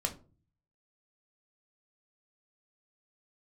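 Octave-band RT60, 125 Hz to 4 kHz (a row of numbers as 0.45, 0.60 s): 0.85, 0.60, 0.40, 0.35, 0.25, 0.20 s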